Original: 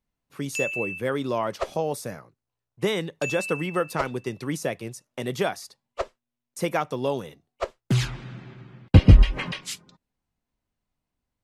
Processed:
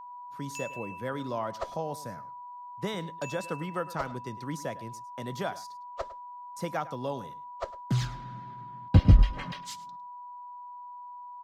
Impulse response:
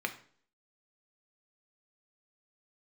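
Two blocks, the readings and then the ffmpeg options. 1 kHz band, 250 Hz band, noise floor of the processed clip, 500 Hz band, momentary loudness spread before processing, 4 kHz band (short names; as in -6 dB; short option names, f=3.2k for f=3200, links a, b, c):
-1.5 dB, -6.5 dB, -44 dBFS, -8.5 dB, 20 LU, -8.5 dB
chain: -filter_complex "[0:a]equalizer=f=400:t=o:w=0.67:g=-7,equalizer=f=2.5k:t=o:w=0.67:g=-8,equalizer=f=10k:t=o:w=0.67:g=-8,acrossover=split=510|3700[a][b][c];[c]acrusher=bits=5:mode=log:mix=0:aa=0.000001[d];[a][b][d]amix=inputs=3:normalize=0,aeval=exprs='val(0)+0.0141*sin(2*PI*980*n/s)':c=same,asplit=2[e][f];[f]adelay=105,volume=-17dB,highshelf=f=4k:g=-2.36[g];[e][g]amix=inputs=2:normalize=0,volume=-5dB"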